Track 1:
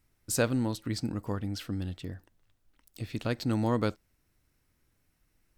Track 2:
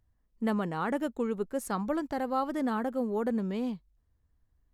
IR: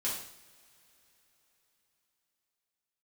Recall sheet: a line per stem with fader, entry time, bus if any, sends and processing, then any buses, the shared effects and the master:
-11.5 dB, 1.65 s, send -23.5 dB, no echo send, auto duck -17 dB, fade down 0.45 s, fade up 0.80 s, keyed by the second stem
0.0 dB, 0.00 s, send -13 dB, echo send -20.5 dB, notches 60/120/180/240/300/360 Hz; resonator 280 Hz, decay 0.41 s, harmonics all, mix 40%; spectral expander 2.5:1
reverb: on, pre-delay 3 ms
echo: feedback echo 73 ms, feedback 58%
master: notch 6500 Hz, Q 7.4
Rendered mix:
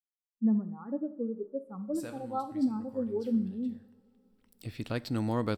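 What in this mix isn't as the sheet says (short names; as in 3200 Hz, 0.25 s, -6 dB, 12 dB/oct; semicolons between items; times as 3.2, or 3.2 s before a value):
stem 1 -11.5 dB -> -3.0 dB; stem 2: missing notches 60/120/180/240/300/360 Hz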